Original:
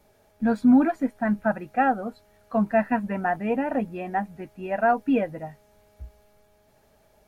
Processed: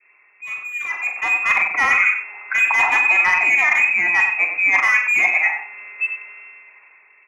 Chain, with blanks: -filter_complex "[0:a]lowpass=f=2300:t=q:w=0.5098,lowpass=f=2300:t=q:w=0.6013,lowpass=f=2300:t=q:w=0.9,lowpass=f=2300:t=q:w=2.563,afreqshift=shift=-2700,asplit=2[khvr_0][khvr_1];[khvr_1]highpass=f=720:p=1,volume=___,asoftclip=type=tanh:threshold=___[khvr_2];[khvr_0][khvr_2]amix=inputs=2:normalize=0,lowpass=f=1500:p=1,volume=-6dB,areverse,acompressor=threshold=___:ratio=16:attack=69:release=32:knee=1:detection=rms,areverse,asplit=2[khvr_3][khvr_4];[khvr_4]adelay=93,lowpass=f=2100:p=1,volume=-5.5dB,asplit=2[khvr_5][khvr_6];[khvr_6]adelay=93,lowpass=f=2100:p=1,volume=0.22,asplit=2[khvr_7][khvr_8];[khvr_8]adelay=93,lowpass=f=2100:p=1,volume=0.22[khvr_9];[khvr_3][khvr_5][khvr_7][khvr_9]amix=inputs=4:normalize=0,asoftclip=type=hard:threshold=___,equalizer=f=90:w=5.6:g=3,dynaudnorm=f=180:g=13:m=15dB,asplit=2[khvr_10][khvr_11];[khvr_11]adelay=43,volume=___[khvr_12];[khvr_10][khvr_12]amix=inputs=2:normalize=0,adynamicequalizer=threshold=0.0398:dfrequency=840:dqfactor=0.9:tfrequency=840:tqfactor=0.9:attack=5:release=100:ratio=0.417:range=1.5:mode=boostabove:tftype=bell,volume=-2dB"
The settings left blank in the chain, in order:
17dB, -8.5dB, -32dB, -19dB, -8dB